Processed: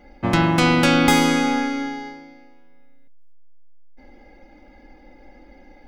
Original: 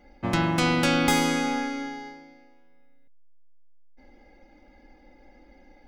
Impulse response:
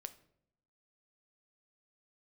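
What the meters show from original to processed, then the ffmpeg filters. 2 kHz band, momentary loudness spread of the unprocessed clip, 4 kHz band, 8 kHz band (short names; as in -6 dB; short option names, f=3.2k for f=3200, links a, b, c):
+5.5 dB, 15 LU, +5.0 dB, +3.5 dB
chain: -filter_complex "[0:a]asplit=2[a][b];[1:a]atrim=start_sample=2205,lowpass=4.8k[c];[b][c]afir=irnorm=-1:irlink=0,volume=-5dB[d];[a][d]amix=inputs=2:normalize=0,volume=4dB"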